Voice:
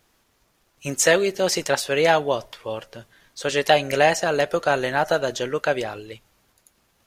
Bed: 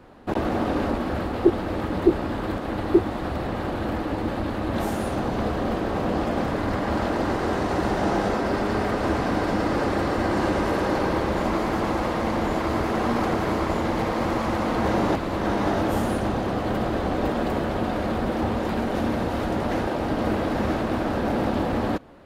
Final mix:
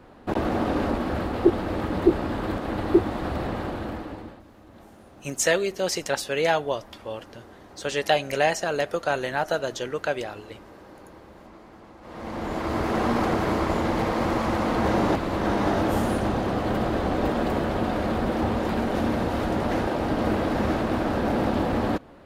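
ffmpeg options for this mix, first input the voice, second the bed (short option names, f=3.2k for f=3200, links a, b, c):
-filter_complex "[0:a]adelay=4400,volume=-4.5dB[a];[1:a]volume=23dB,afade=t=out:st=3.44:d=0.98:silence=0.0707946,afade=t=in:st=12.01:d=0.96:silence=0.0668344[b];[a][b]amix=inputs=2:normalize=0"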